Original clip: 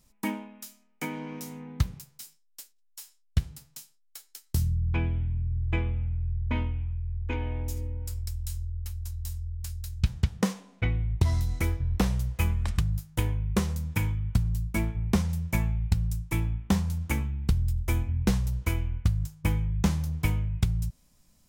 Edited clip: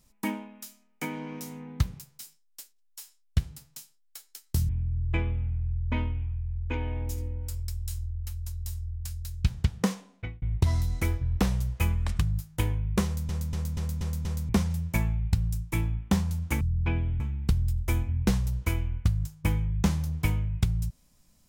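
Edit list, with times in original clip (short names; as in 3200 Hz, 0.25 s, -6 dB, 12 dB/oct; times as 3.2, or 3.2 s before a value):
4.69–5.28 move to 17.2
10.54–11.01 fade out
13.64 stutter in place 0.24 s, 6 plays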